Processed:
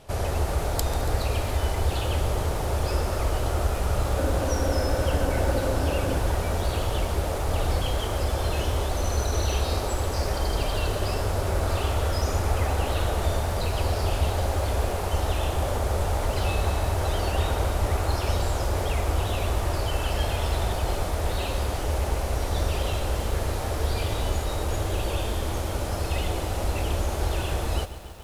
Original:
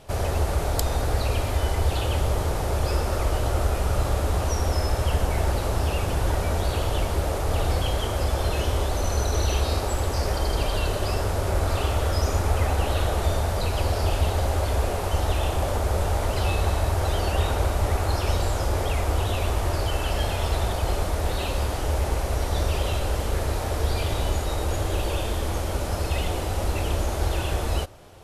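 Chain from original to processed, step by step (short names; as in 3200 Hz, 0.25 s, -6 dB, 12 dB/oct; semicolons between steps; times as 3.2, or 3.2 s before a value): 4.16–6.19 small resonant body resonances 280/530/1500 Hz, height 9 dB; lo-fi delay 0.141 s, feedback 80%, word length 7-bit, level -14.5 dB; gain -1.5 dB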